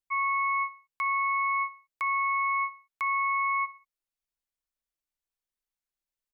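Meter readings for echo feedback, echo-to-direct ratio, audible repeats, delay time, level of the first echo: 41%, -16.5 dB, 3, 61 ms, -17.5 dB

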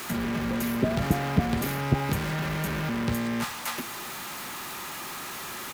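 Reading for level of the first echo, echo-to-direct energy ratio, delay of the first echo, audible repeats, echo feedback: -24.0 dB, -23.5 dB, 0.399 s, 1, 36%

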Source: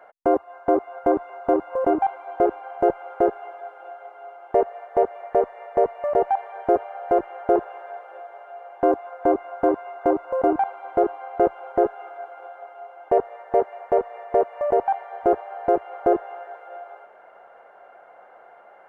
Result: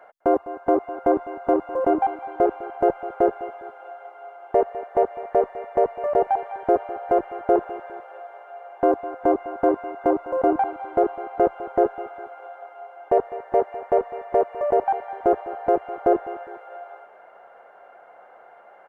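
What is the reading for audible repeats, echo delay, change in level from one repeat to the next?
2, 0.204 s, -6.5 dB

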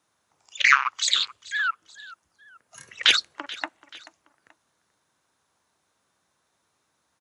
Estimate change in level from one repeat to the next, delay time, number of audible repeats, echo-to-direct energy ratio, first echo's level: -7.5 dB, 0.433 s, 2, -18.5 dB, -19.0 dB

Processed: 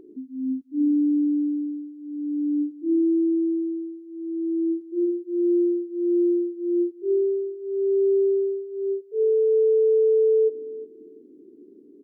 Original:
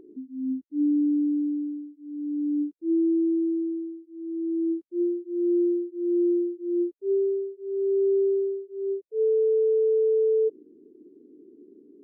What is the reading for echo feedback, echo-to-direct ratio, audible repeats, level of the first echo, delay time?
25%, -16.0 dB, 2, -16.5 dB, 0.357 s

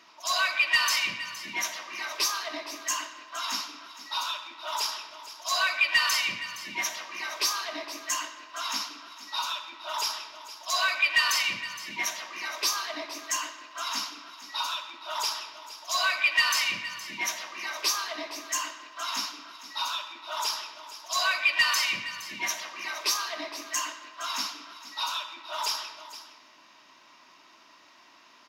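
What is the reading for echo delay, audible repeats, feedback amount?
0.466 s, 1, no steady repeat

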